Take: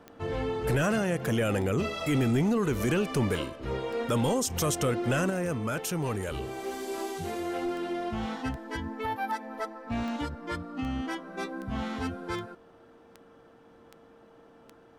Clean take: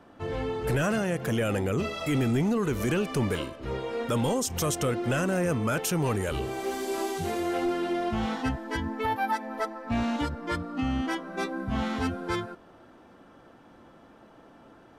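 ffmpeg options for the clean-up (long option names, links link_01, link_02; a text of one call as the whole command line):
ffmpeg -i in.wav -af "adeclick=threshold=4,bandreject=frequency=460:width=30,asetnsamples=nb_out_samples=441:pad=0,asendcmd='5.3 volume volume 4dB',volume=0dB" out.wav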